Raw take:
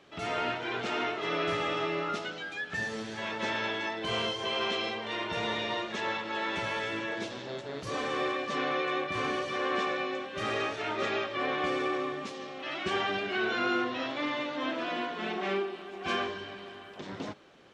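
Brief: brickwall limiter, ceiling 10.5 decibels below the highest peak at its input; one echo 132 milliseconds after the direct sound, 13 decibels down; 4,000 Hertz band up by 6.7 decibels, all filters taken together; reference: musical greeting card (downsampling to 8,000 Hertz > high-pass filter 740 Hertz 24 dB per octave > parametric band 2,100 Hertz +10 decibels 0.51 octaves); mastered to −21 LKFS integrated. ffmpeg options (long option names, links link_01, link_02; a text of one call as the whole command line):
ffmpeg -i in.wav -af "equalizer=frequency=4000:width_type=o:gain=7,alimiter=level_in=4dB:limit=-24dB:level=0:latency=1,volume=-4dB,aecho=1:1:132:0.224,aresample=8000,aresample=44100,highpass=frequency=740:width=0.5412,highpass=frequency=740:width=1.3066,equalizer=frequency=2100:width_type=o:width=0.51:gain=10,volume=12dB" out.wav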